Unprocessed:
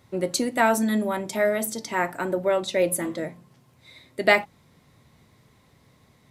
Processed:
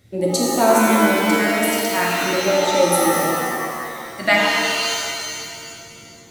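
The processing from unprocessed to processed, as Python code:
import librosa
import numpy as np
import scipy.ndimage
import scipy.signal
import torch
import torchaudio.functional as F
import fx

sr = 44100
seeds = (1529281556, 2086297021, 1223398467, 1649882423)

y = fx.filter_lfo_notch(x, sr, shape='sine', hz=0.41, low_hz=430.0, high_hz=1900.0, q=0.96)
y = fx.rev_shimmer(y, sr, seeds[0], rt60_s=2.1, semitones=7, shimmer_db=-2, drr_db=-2.5)
y = F.gain(torch.from_numpy(y), 2.5).numpy()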